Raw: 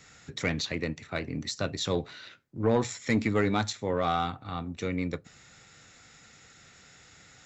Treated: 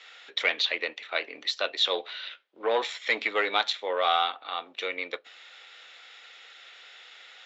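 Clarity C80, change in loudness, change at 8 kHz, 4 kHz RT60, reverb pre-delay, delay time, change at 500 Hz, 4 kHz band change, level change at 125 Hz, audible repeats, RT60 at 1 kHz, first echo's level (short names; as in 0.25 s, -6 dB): none, +2.5 dB, n/a, none, none, none, 0.0 dB, +9.5 dB, under -35 dB, none, none, none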